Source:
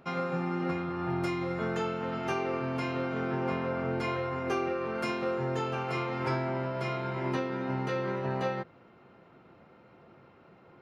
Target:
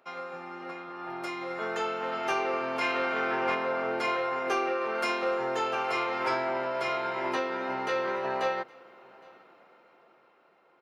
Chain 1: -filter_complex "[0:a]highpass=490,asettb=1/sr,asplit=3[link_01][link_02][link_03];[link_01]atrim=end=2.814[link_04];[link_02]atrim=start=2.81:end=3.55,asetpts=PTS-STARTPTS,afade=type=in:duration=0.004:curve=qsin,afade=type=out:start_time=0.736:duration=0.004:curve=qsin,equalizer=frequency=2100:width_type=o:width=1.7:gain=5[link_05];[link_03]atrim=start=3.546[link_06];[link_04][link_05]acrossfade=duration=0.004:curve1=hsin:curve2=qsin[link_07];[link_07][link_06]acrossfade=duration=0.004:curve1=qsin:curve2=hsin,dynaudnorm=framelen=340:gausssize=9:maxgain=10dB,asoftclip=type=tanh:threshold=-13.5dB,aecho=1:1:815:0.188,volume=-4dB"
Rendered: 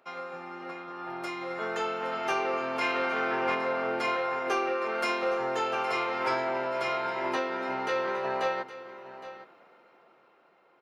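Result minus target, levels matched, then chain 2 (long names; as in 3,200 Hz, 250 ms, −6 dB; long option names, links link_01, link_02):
echo-to-direct +11.5 dB
-filter_complex "[0:a]highpass=490,asettb=1/sr,asplit=3[link_01][link_02][link_03];[link_01]atrim=end=2.814[link_04];[link_02]atrim=start=2.81:end=3.55,asetpts=PTS-STARTPTS,afade=type=in:duration=0.004:curve=qsin,afade=type=out:start_time=0.736:duration=0.004:curve=qsin,equalizer=frequency=2100:width_type=o:width=1.7:gain=5[link_05];[link_03]atrim=start=3.546[link_06];[link_04][link_05]acrossfade=duration=0.004:curve1=hsin:curve2=qsin[link_07];[link_07][link_06]acrossfade=duration=0.004:curve1=qsin:curve2=hsin,dynaudnorm=framelen=340:gausssize=9:maxgain=10dB,asoftclip=type=tanh:threshold=-13.5dB,aecho=1:1:815:0.0501,volume=-4dB"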